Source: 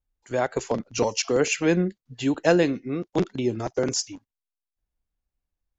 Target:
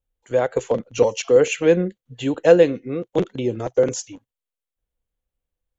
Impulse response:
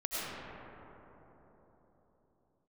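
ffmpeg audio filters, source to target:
-af "equalizer=f=125:t=o:w=0.33:g=3,equalizer=f=500:t=o:w=0.33:g=11,equalizer=f=3150:t=o:w=0.33:g=4,equalizer=f=5000:t=o:w=0.33:g=-11"

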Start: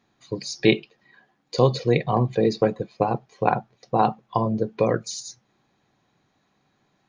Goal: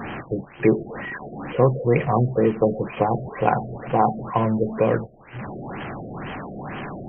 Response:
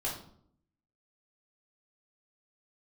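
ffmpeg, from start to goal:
-af "aeval=exprs='val(0)+0.5*0.0562*sgn(val(0))':c=same,afftfilt=real='re*lt(b*sr/1024,710*pow(3300/710,0.5+0.5*sin(2*PI*2.1*pts/sr)))':imag='im*lt(b*sr/1024,710*pow(3300/710,0.5+0.5*sin(2*PI*2.1*pts/sr)))':win_size=1024:overlap=0.75"

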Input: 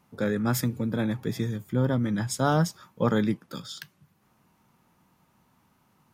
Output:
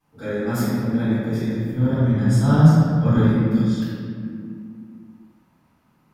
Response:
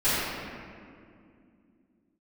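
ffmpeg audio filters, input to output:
-filter_complex "[0:a]asettb=1/sr,asplit=3[s0][s1][s2];[s0]atrim=end=1.344[s3];[s1]atrim=start=1.34:end=3.17,asetpts=PTS-STARTPTS,afade=t=in:d=0.004:c=qsin,afade=t=out:st=1.826:d=0.004:c=qsin,asubboost=boost=9:cutoff=200[s4];[s2]atrim=start=3.166[s5];[s3][s4]acrossfade=d=0.004:c1=hsin:c2=qsin[s6];[s6][s5]acrossfade=d=0.004:c1=qsin:c2=hsin[s7];[1:a]atrim=start_sample=2205[s8];[s7][s8]afir=irnorm=-1:irlink=0,volume=0.224"

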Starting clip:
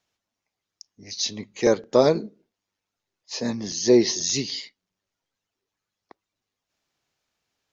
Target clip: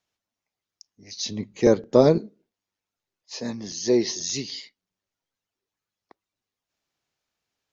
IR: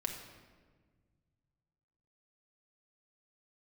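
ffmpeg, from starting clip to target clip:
-filter_complex "[0:a]asettb=1/sr,asplit=3[s0][s1][s2];[s0]atrim=end=1.264[s3];[s1]atrim=start=1.26:end=2.18,asetpts=PTS-STARTPTS,afade=t=in:d=0.004:c=qsin,afade=t=out:st=0.916:d=0.004:c=qsin,lowshelf=f=460:g=11[s4];[s2]atrim=start=2.176[s5];[s3][s4]acrossfade=d=0.004:c1=hsin:c2=qsin[s6];[s6][s5]acrossfade=d=0.004:c1=qsin:c2=hsin,volume=0.631"

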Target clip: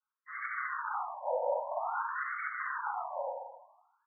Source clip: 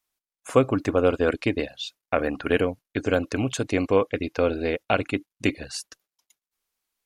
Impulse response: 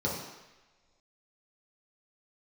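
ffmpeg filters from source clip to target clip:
-filter_complex "[0:a]acrossover=split=580[s0][s1];[s0]volume=8.91,asoftclip=hard,volume=0.112[s2];[s1]acompressor=threshold=0.0112:ratio=6[s3];[s2][s3]amix=inputs=2:normalize=0,highpass=140,lowpass=3600,aresample=16000,aeval=exprs='(mod(22.4*val(0)+1,2)-1)/22.4':c=same,aresample=44100,aecho=1:1:281:0.282[s4];[1:a]atrim=start_sample=2205,asetrate=26460,aresample=44100[s5];[s4][s5]afir=irnorm=-1:irlink=0,asetrate=76440,aresample=44100,afftfilt=real='re*between(b*sr/1024,690*pow(1600/690,0.5+0.5*sin(2*PI*0.51*pts/sr))/1.41,690*pow(1600/690,0.5+0.5*sin(2*PI*0.51*pts/sr))*1.41)':imag='im*between(b*sr/1024,690*pow(1600/690,0.5+0.5*sin(2*PI*0.51*pts/sr))/1.41,690*pow(1600/690,0.5+0.5*sin(2*PI*0.51*pts/sr))*1.41)':win_size=1024:overlap=0.75,volume=0.501"

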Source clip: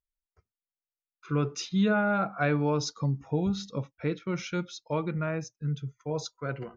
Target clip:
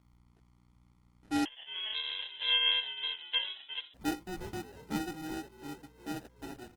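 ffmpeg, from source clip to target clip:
-filter_complex "[0:a]highpass=160,aemphasis=mode=production:type=bsi,acompressor=mode=upward:threshold=0.00447:ratio=2.5,asplit=3[s0][s1][s2];[s0]bandpass=f=300:t=q:w=8,volume=1[s3];[s1]bandpass=f=870:t=q:w=8,volume=0.501[s4];[s2]bandpass=f=2240:t=q:w=8,volume=0.355[s5];[s3][s4][s5]amix=inputs=3:normalize=0,aeval=exprs='val(0)+0.000355*(sin(2*PI*60*n/s)+sin(2*PI*2*60*n/s)/2+sin(2*PI*3*60*n/s)/3+sin(2*PI*4*60*n/s)/4+sin(2*PI*5*60*n/s)/5)':c=same,acrusher=samples=40:mix=1:aa=0.000001,asplit=4[s6][s7][s8][s9];[s7]adelay=355,afreqshift=68,volume=0.211[s10];[s8]adelay=710,afreqshift=136,volume=0.0741[s11];[s9]adelay=1065,afreqshift=204,volume=0.026[s12];[s6][s10][s11][s12]amix=inputs=4:normalize=0,asettb=1/sr,asplit=3[s13][s14][s15];[s13]atrim=end=1.454[s16];[s14]atrim=start=1.45:end=3.94,asetpts=PTS-STARTPTS,afade=t=in:d=0.004:c=qsin,afade=t=out:st=2.486:d=0.004:c=qsin,lowpass=f=3000:t=q:w=0.5098,lowpass=f=3000:t=q:w=0.6013,lowpass=f=3000:t=q:w=0.9,lowpass=f=3000:t=q:w=2.563,afreqshift=-3500[s17];[s15]atrim=start=3.936[s18];[s16][s17]acrossfade=d=0.004:c1=hsin:c2=qsin[s19];[s19][s18]acrossfade=d=0.004:c1=qsin:c2=hsin,volume=2.37" -ar 48000 -c:a libopus -b:a 16k

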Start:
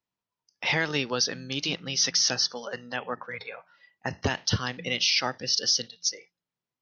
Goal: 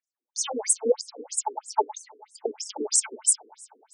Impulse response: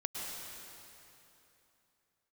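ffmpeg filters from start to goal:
-filter_complex "[0:a]equalizer=f=125:t=o:w=1:g=7,equalizer=f=250:t=o:w=1:g=8,equalizer=f=500:t=o:w=1:g=9,equalizer=f=1000:t=o:w=1:g=-4,equalizer=f=2000:t=o:w=1:g=-11,equalizer=f=4000:t=o:w=1:g=11,equalizer=f=8000:t=o:w=1:g=-8,aphaser=in_gain=1:out_gain=1:delay=2.9:decay=0.63:speed=0.64:type=triangular,asetrate=76440,aresample=44100,asplit=2[s0][s1];[1:a]atrim=start_sample=2205,adelay=24[s2];[s1][s2]afir=irnorm=-1:irlink=0,volume=0.106[s3];[s0][s3]amix=inputs=2:normalize=0,afftfilt=real='re*between(b*sr/1024,330*pow(7600/330,0.5+0.5*sin(2*PI*3.1*pts/sr))/1.41,330*pow(7600/330,0.5+0.5*sin(2*PI*3.1*pts/sr))*1.41)':imag='im*between(b*sr/1024,330*pow(7600/330,0.5+0.5*sin(2*PI*3.1*pts/sr))/1.41,330*pow(7600/330,0.5+0.5*sin(2*PI*3.1*pts/sr))*1.41)':win_size=1024:overlap=0.75"

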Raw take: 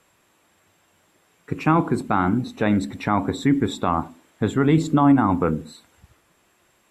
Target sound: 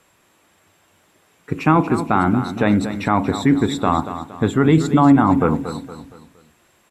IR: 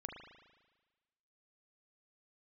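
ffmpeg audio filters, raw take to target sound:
-af "aecho=1:1:233|466|699|932:0.282|0.113|0.0451|0.018,volume=1.5"

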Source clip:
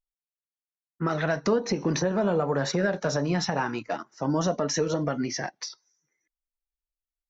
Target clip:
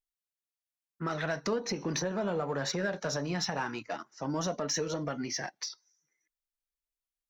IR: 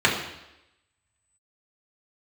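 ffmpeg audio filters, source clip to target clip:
-filter_complex "[0:a]asplit=2[s0][s1];[s1]asoftclip=type=tanh:threshold=0.0282,volume=0.316[s2];[s0][s2]amix=inputs=2:normalize=0,tiltshelf=f=1400:g=-3,volume=0.501"

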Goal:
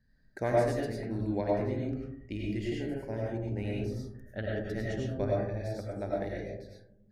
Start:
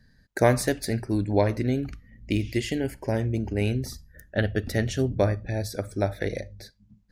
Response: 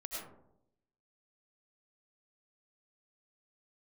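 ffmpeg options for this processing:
-filter_complex "[0:a]aemphasis=mode=reproduction:type=50kf[s0];[1:a]atrim=start_sample=2205[s1];[s0][s1]afir=irnorm=-1:irlink=0,volume=0.447"

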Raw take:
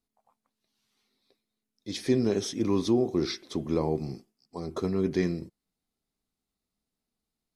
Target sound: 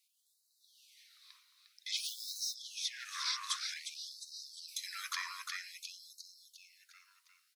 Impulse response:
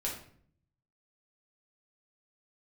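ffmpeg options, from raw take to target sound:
-filter_complex "[0:a]asettb=1/sr,asplit=3[s0][s1][s2];[s0]atrim=end=4.684[s3];[s1]atrim=start=4.68:end=5.15,asetpts=PTS-STARTPTS,afade=t=in:d=0.004:c=qsin,afade=t=out:st=0.466:d=0.004:c=qsin,aemphasis=mode=production:type=75kf[s4];[s2]atrim=start=5.146[s5];[s3][s4]acrossfade=d=0.004:c1=hsin:c2=qsin[s6];[s6][s5]acrossfade=d=0.004:c1=qsin:c2=hsin,acrossover=split=210|840[s7][s8][s9];[s8]volume=29.9,asoftclip=hard,volume=0.0335[s10];[s7][s10][s9]amix=inputs=3:normalize=0,acrossover=split=200|890|5100[s11][s12][s13][s14];[s11]acompressor=threshold=0.00562:ratio=4[s15];[s12]acompressor=threshold=0.00891:ratio=4[s16];[s13]acompressor=threshold=0.00794:ratio=4[s17];[s14]acompressor=threshold=0.00282:ratio=4[s18];[s15][s16][s17][s18]amix=inputs=4:normalize=0,asettb=1/sr,asplit=3[s19][s20][s21];[s19]atrim=end=3.054[s22];[s20]atrim=start=3.05:end=3.74,asetpts=PTS-STARTPTS,afade=t=in:d=0.004:c=qsin,afade=t=out:st=0.686:d=0.004:c=qsin,equalizer=f=8400:w=1.3:g=10.5[s23];[s21]atrim=start=3.736[s24];[s22][s23]acrossfade=d=0.004:c1=hsin:c2=qsin[s25];[s25][s24]acrossfade=d=0.004:c1=qsin:c2=hsin,asplit=7[s26][s27][s28][s29][s30][s31][s32];[s27]adelay=354,afreqshift=53,volume=0.473[s33];[s28]adelay=708,afreqshift=106,volume=0.232[s34];[s29]adelay=1062,afreqshift=159,volume=0.114[s35];[s30]adelay=1416,afreqshift=212,volume=0.0556[s36];[s31]adelay=1770,afreqshift=265,volume=0.0272[s37];[s32]adelay=2124,afreqshift=318,volume=0.0133[s38];[s26][s33][s34][s35][s36][s37][s38]amix=inputs=7:normalize=0,asplit=3[s39][s40][s41];[s39]afade=t=out:st=1.96:d=0.02[s42];[s40]acrusher=bits=3:mode=log:mix=0:aa=0.000001,afade=t=in:st=1.96:d=0.02,afade=t=out:st=2.53:d=0.02[s43];[s41]afade=t=in:st=2.53:d=0.02[s44];[s42][s43][s44]amix=inputs=3:normalize=0,acompressor=threshold=0.00501:ratio=3,afftfilt=real='re*gte(b*sr/1024,930*pow(3800/930,0.5+0.5*sin(2*PI*0.52*pts/sr)))':imag='im*gte(b*sr/1024,930*pow(3800/930,0.5+0.5*sin(2*PI*0.52*pts/sr)))':win_size=1024:overlap=0.75,volume=4.73"

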